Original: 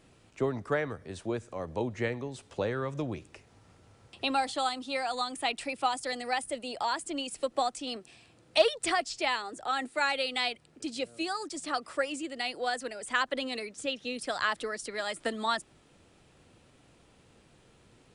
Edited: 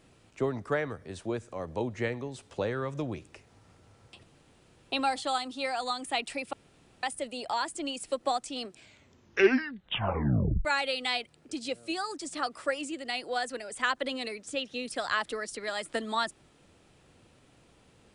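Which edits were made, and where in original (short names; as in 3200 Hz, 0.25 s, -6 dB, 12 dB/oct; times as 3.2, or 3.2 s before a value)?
4.23 insert room tone 0.69 s
5.84–6.34 room tone
7.98 tape stop 1.98 s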